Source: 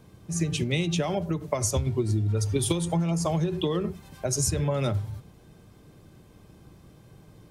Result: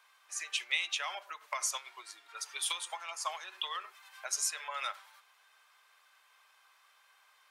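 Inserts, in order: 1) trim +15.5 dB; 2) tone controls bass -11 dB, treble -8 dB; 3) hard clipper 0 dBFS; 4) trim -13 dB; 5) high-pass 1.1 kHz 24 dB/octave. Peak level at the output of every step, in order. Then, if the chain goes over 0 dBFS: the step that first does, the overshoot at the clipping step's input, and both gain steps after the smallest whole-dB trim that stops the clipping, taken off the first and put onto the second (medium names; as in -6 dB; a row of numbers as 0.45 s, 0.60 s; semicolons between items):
+4.5 dBFS, +3.0 dBFS, 0.0 dBFS, -13.0 dBFS, -16.5 dBFS; step 1, 3.0 dB; step 1 +12.5 dB, step 4 -10 dB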